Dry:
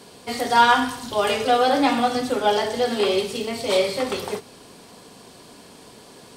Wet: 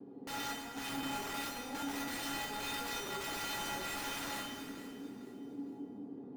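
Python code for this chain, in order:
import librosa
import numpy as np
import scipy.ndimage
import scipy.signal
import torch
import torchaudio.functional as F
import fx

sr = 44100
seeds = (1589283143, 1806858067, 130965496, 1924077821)

y = fx.octave_divider(x, sr, octaves=1, level_db=-4.0)
y = fx.low_shelf(y, sr, hz=350.0, db=3.0)
y = y + 0.39 * np.pad(y, (int(2.5 * sr / 1000.0), 0))[:len(y)]
y = fx.over_compress(y, sr, threshold_db=-23.0, ratio=-0.5)
y = fx.ladder_bandpass(y, sr, hz=260.0, resonance_pct=45)
y = (np.mod(10.0 ** (39.5 / 20.0) * y + 1.0, 2.0) - 1.0) / 10.0 ** (39.5 / 20.0)
y = fx.vibrato(y, sr, rate_hz=1.3, depth_cents=39.0)
y = fx.comb_fb(y, sr, f0_hz=280.0, decay_s=0.27, harmonics='odd', damping=0.0, mix_pct=90)
y = fx.echo_feedback(y, sr, ms=454, feedback_pct=37, wet_db=-15)
y = fx.rev_plate(y, sr, seeds[0], rt60_s=2.1, hf_ratio=0.75, predelay_ms=0, drr_db=0.0)
y = y * 10.0 ** (16.0 / 20.0)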